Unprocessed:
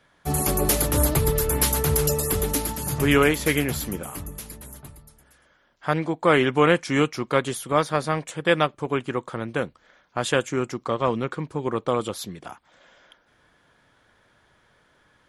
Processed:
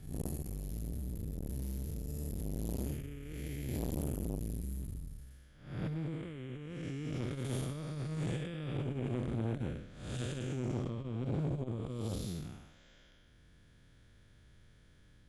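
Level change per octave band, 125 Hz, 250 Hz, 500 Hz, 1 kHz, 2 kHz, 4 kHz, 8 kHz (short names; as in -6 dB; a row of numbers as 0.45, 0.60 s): -8.5, -12.5, -20.5, -26.0, -25.5, -20.5, -23.5 dB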